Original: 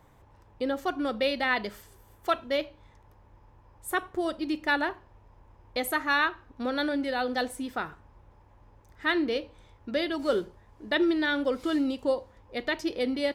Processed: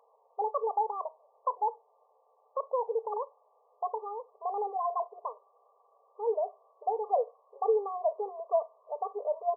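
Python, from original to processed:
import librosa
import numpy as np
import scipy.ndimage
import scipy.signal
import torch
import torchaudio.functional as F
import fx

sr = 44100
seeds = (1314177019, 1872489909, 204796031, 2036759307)

y = fx.speed_glide(x, sr, from_pct=158, to_pct=121)
y = fx.brickwall_bandpass(y, sr, low_hz=410.0, high_hz=1200.0)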